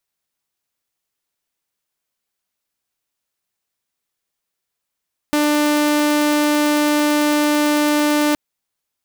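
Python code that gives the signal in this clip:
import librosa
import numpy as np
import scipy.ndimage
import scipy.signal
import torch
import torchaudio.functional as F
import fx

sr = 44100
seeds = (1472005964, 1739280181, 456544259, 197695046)

y = 10.0 ** (-11.5 / 20.0) * (2.0 * np.mod(297.0 * (np.arange(round(3.02 * sr)) / sr), 1.0) - 1.0)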